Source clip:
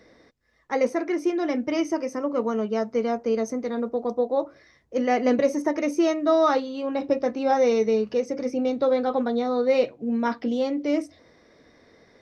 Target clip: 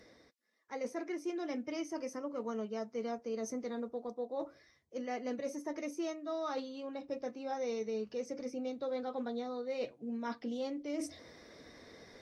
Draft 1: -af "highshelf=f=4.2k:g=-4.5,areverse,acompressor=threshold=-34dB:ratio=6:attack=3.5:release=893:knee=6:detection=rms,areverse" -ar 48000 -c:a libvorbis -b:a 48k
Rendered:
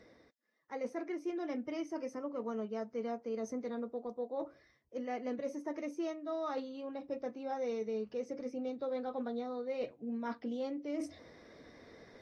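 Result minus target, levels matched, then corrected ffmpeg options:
8000 Hz band -7.5 dB
-af "highshelf=f=4.2k:g=7,areverse,acompressor=threshold=-34dB:ratio=6:attack=3.5:release=893:knee=6:detection=rms,areverse" -ar 48000 -c:a libvorbis -b:a 48k

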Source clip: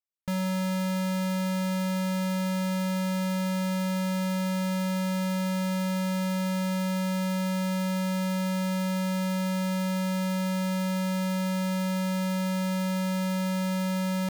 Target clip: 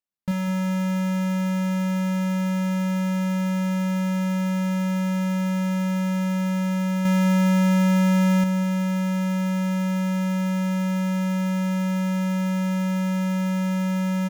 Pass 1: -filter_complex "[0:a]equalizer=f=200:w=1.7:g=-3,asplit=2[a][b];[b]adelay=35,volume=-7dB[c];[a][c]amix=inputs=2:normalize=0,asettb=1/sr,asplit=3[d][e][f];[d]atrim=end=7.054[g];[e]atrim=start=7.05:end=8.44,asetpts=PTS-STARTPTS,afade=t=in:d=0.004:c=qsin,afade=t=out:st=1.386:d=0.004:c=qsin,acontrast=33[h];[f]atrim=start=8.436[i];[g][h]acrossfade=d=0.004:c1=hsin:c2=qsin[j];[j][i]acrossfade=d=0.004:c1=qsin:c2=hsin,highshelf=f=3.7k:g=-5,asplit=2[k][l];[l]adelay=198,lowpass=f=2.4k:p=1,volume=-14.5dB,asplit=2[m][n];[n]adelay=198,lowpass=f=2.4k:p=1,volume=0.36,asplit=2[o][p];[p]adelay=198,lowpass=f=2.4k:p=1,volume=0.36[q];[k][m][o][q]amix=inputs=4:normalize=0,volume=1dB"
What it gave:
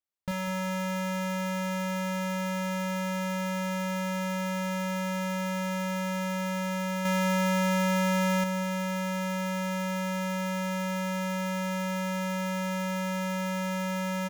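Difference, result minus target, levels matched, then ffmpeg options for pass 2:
250 Hz band -2.5 dB
-filter_complex "[0:a]equalizer=f=200:w=1.7:g=7,asplit=2[a][b];[b]adelay=35,volume=-7dB[c];[a][c]amix=inputs=2:normalize=0,asettb=1/sr,asplit=3[d][e][f];[d]atrim=end=7.054[g];[e]atrim=start=7.05:end=8.44,asetpts=PTS-STARTPTS,afade=t=in:d=0.004:c=qsin,afade=t=out:st=1.386:d=0.004:c=qsin,acontrast=33[h];[f]atrim=start=8.436[i];[g][h]acrossfade=d=0.004:c1=hsin:c2=qsin[j];[j][i]acrossfade=d=0.004:c1=qsin:c2=hsin,highshelf=f=3.7k:g=-5,asplit=2[k][l];[l]adelay=198,lowpass=f=2.4k:p=1,volume=-14.5dB,asplit=2[m][n];[n]adelay=198,lowpass=f=2.4k:p=1,volume=0.36,asplit=2[o][p];[p]adelay=198,lowpass=f=2.4k:p=1,volume=0.36[q];[k][m][o][q]amix=inputs=4:normalize=0,volume=1dB"

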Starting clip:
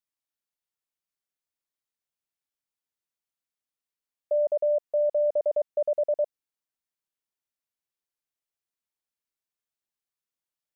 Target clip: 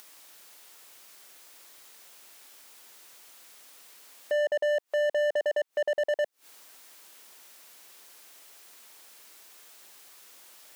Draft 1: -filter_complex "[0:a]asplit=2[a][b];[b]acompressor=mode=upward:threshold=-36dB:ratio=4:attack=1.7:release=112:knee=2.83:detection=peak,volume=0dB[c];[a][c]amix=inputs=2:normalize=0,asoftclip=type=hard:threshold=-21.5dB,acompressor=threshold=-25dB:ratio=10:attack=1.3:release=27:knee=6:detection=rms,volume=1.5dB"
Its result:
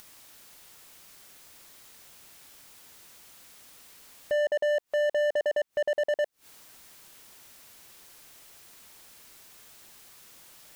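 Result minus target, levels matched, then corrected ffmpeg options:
250 Hz band +3.5 dB
-filter_complex "[0:a]asplit=2[a][b];[b]acompressor=mode=upward:threshold=-36dB:ratio=4:attack=1.7:release=112:knee=2.83:detection=peak,volume=0dB[c];[a][c]amix=inputs=2:normalize=0,asoftclip=type=hard:threshold=-21.5dB,acompressor=threshold=-25dB:ratio=10:attack=1.3:release=27:knee=6:detection=rms,highpass=330,volume=1.5dB"

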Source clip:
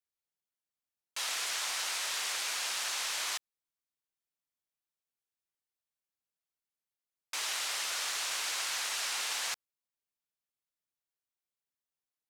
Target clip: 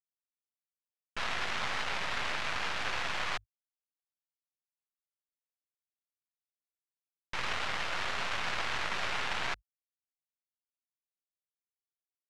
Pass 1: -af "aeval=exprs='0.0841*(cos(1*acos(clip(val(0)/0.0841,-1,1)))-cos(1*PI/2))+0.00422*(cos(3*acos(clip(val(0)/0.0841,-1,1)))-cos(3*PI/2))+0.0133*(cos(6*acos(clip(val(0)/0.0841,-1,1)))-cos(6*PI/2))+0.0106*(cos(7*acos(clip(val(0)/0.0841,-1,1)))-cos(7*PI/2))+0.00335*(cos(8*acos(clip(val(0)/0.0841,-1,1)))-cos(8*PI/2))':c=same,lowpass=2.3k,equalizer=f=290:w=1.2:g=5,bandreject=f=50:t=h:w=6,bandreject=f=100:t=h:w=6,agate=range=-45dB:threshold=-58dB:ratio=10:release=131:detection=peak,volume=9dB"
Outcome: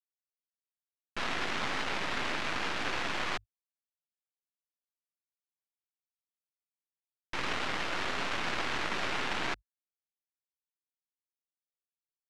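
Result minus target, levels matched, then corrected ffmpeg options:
250 Hz band +7.5 dB
-af "aeval=exprs='0.0841*(cos(1*acos(clip(val(0)/0.0841,-1,1)))-cos(1*PI/2))+0.00422*(cos(3*acos(clip(val(0)/0.0841,-1,1)))-cos(3*PI/2))+0.0133*(cos(6*acos(clip(val(0)/0.0841,-1,1)))-cos(6*PI/2))+0.0106*(cos(7*acos(clip(val(0)/0.0841,-1,1)))-cos(7*PI/2))+0.00335*(cos(8*acos(clip(val(0)/0.0841,-1,1)))-cos(8*PI/2))':c=same,lowpass=2.3k,equalizer=f=290:w=1.2:g=-5.5,bandreject=f=50:t=h:w=6,bandreject=f=100:t=h:w=6,agate=range=-45dB:threshold=-58dB:ratio=10:release=131:detection=peak,volume=9dB"

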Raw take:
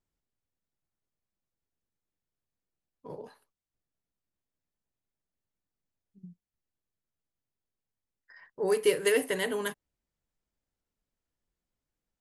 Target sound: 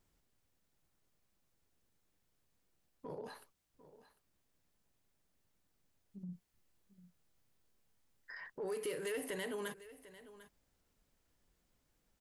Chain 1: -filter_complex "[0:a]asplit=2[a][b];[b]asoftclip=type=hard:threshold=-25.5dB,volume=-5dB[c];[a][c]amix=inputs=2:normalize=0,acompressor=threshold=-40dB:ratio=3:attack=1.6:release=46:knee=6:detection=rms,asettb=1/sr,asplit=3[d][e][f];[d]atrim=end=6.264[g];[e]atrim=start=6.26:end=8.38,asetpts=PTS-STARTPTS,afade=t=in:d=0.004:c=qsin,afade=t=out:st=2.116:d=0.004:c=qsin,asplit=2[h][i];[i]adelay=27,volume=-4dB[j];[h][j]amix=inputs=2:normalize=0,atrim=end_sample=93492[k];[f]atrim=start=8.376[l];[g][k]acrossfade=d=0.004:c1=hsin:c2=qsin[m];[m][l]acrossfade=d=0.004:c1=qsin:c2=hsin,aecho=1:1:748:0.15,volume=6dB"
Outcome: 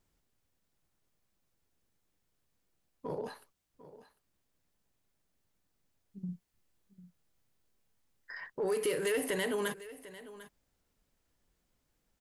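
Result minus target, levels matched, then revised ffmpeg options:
compressor: peak gain reduction -8 dB
-filter_complex "[0:a]asplit=2[a][b];[b]asoftclip=type=hard:threshold=-25.5dB,volume=-5dB[c];[a][c]amix=inputs=2:normalize=0,acompressor=threshold=-52dB:ratio=3:attack=1.6:release=46:knee=6:detection=rms,asettb=1/sr,asplit=3[d][e][f];[d]atrim=end=6.264[g];[e]atrim=start=6.26:end=8.38,asetpts=PTS-STARTPTS,afade=t=in:d=0.004:c=qsin,afade=t=out:st=2.116:d=0.004:c=qsin,asplit=2[h][i];[i]adelay=27,volume=-4dB[j];[h][j]amix=inputs=2:normalize=0,atrim=end_sample=93492[k];[f]atrim=start=8.376[l];[g][k]acrossfade=d=0.004:c1=hsin:c2=qsin[m];[m][l]acrossfade=d=0.004:c1=qsin:c2=hsin,aecho=1:1:748:0.15,volume=6dB"

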